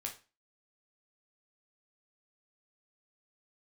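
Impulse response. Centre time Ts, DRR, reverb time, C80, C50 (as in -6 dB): 15 ms, 0.5 dB, 0.30 s, 17.5 dB, 11.0 dB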